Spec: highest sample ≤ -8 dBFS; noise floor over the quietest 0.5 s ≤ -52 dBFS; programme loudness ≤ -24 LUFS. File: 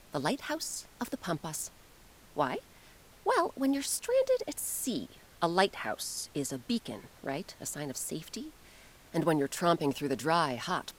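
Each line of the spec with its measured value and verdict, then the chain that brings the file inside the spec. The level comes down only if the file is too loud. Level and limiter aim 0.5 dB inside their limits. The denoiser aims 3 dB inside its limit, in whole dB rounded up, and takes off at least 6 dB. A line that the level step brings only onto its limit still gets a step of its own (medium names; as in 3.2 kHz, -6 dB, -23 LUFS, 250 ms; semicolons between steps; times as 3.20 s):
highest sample -10.5 dBFS: pass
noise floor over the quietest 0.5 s -57 dBFS: pass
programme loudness -32.5 LUFS: pass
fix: none needed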